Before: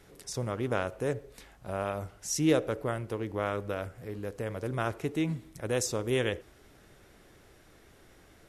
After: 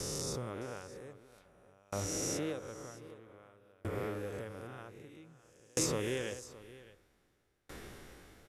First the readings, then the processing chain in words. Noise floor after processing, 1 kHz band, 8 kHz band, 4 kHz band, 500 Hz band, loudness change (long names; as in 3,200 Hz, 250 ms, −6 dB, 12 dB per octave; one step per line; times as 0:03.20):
−73 dBFS, −10.0 dB, −1.0 dB, −3.5 dB, −8.5 dB, −6.5 dB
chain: peak hold with a rise ahead of every peak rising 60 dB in 1.13 s
notch filter 650 Hz, Q 12
downward compressor 2 to 1, threshold −44 dBFS, peak gain reduction 14 dB
single-tap delay 614 ms −7 dB
tremolo with a ramp in dB decaying 0.52 Hz, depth 34 dB
level +7.5 dB